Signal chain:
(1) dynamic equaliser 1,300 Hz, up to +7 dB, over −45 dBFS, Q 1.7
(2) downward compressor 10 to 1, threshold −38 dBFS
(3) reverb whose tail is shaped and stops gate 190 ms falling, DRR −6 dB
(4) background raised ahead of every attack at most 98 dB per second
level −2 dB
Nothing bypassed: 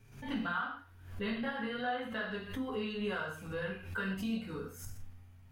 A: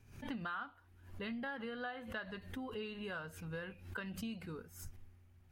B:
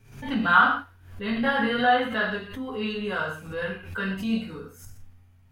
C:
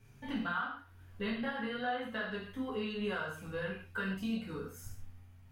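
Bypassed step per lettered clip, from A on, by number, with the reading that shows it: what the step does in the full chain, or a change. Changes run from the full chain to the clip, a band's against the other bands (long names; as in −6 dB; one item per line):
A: 3, change in momentary loudness spread −2 LU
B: 2, average gain reduction 7.0 dB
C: 4, 8 kHz band −2.0 dB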